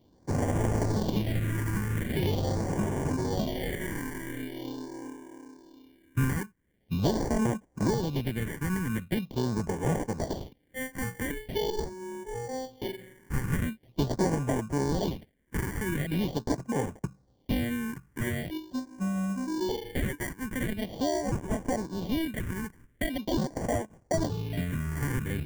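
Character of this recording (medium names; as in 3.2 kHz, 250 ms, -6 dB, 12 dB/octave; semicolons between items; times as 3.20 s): aliases and images of a low sample rate 1.3 kHz, jitter 0%; phasing stages 4, 0.43 Hz, lowest notch 620–4000 Hz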